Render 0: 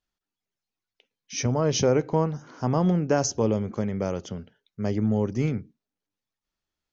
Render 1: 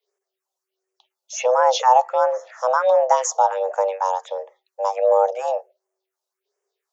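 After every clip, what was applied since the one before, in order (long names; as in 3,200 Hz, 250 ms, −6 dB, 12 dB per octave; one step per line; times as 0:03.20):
frequency shifter +380 Hz
all-pass phaser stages 4, 1.4 Hz, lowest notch 320–3,900 Hz
level +7.5 dB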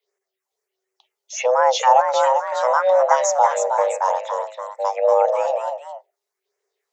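delay with pitch and tempo change per echo 506 ms, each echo +1 semitone, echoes 2, each echo −6 dB
parametric band 2,000 Hz +7 dB 0.42 octaves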